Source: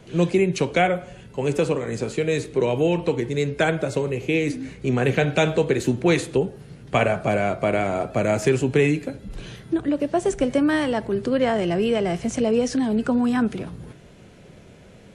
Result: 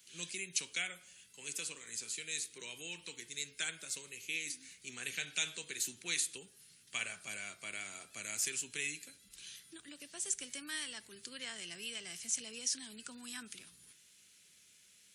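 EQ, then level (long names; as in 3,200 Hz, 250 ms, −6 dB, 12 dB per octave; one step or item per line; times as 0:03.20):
first difference
guitar amp tone stack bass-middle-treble 6-0-2
parametric band 130 Hz −6.5 dB 0.26 octaves
+16.0 dB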